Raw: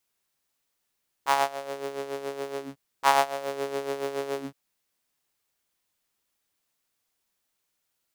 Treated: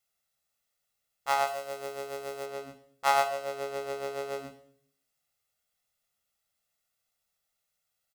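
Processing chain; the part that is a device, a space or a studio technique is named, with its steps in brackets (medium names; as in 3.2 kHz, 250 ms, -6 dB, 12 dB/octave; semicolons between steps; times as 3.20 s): microphone above a desk (comb 1.5 ms, depth 68%; reverberation RT60 0.60 s, pre-delay 16 ms, DRR 7 dB); 1.47–2.46 s: treble shelf 6.8 kHz +7 dB; trim -5.5 dB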